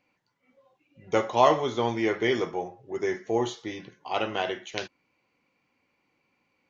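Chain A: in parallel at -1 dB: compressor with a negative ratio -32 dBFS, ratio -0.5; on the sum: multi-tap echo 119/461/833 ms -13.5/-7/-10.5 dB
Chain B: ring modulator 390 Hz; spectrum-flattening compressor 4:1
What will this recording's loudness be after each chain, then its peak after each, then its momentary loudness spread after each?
-24.5 LUFS, -31.0 LUFS; -5.0 dBFS, -8.0 dBFS; 13 LU, 17 LU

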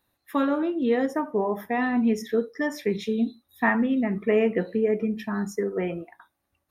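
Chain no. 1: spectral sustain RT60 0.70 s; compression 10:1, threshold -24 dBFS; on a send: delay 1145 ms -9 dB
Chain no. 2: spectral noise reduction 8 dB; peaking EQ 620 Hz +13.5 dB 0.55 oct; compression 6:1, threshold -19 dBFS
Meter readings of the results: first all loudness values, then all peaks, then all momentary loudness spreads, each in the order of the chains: -28.5 LUFS, -25.5 LUFS; -13.5 dBFS, -10.0 dBFS; 4 LU, 4 LU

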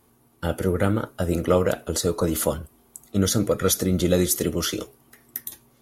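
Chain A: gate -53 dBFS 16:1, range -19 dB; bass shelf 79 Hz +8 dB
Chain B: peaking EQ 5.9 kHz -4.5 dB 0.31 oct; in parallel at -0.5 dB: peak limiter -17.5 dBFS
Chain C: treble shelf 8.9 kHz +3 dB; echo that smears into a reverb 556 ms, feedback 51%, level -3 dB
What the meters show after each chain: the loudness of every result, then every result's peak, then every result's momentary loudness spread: -22.5 LUFS, -20.5 LUFS, -22.0 LUFS; -6.0 dBFS, -4.5 dBFS, -5.0 dBFS; 14 LU, 13 LU, 7 LU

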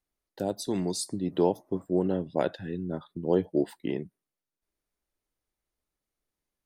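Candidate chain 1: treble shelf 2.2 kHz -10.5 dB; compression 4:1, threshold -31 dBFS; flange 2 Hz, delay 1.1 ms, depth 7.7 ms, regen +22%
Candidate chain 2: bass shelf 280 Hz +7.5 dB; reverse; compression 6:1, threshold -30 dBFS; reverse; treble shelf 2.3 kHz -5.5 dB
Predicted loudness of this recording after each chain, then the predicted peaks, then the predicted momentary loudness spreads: -41.0 LUFS, -36.5 LUFS; -24.0 dBFS, -17.5 dBFS; 4 LU, 4 LU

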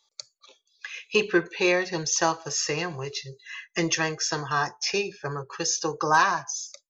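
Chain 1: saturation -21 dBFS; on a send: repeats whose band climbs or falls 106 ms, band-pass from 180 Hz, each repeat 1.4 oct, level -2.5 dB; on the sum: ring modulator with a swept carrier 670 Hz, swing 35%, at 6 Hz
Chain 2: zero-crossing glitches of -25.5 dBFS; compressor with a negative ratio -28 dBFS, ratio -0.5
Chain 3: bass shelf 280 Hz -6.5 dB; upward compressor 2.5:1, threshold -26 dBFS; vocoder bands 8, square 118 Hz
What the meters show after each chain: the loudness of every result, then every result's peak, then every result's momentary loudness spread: -31.5 LUFS, -28.0 LUFS, -28.5 LUFS; -18.0 dBFS, -13.5 dBFS, -11.0 dBFS; 12 LU, 4 LU, 12 LU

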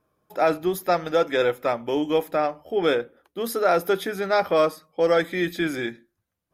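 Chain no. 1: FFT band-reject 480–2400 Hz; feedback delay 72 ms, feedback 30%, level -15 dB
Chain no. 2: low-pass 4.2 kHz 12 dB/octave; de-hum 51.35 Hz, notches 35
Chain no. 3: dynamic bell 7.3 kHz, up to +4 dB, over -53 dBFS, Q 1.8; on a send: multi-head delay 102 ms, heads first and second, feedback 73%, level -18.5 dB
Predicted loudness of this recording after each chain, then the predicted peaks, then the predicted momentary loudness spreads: -28.5 LUFS, -24.5 LUFS, -23.5 LUFS; -12.0 dBFS, -7.5 dBFS, -8.0 dBFS; 9 LU, 6 LU, 10 LU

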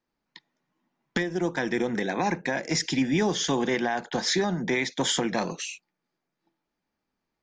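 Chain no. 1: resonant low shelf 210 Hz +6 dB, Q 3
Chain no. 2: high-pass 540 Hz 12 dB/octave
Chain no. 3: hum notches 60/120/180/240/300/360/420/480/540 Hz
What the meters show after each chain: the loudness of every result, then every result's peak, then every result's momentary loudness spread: -25.5 LUFS, -29.5 LUFS, -27.5 LUFS; -8.5 dBFS, -14.0 dBFS, -13.5 dBFS; 7 LU, 6 LU, 6 LU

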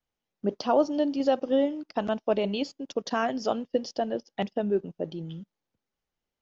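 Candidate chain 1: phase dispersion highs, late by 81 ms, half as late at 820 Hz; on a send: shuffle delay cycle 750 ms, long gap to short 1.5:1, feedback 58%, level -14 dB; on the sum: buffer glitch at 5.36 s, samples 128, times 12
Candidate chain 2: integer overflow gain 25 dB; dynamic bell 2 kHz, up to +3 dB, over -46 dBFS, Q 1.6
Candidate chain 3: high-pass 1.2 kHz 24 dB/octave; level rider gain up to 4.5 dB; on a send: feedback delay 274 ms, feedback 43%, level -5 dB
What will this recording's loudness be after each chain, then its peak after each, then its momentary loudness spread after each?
-28.5 LUFS, -31.0 LUFS, -35.0 LUFS; -11.0 dBFS, -22.0 dBFS, -16.0 dBFS; 17 LU, 8 LU, 16 LU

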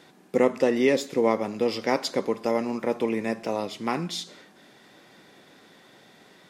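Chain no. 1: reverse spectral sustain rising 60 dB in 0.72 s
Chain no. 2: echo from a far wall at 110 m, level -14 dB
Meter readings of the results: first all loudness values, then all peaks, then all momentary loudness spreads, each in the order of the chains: -24.0 LUFS, -26.0 LUFS; -7.0 dBFS, -8.0 dBFS; 8 LU, 11 LU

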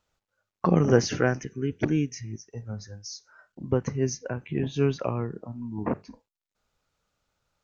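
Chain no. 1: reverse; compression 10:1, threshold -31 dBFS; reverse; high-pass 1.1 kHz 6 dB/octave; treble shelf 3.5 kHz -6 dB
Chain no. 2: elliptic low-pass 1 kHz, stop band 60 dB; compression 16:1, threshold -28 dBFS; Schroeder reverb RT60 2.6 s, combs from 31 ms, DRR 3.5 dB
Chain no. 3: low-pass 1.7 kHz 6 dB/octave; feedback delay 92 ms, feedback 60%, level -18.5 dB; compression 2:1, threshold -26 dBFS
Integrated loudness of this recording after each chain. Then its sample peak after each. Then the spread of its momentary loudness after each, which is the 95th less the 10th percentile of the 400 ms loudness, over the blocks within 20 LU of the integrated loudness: -46.5 LUFS, -35.0 LUFS, -32.0 LUFS; -28.0 dBFS, -16.0 dBFS, -12.5 dBFS; 10 LU, 14 LU, 11 LU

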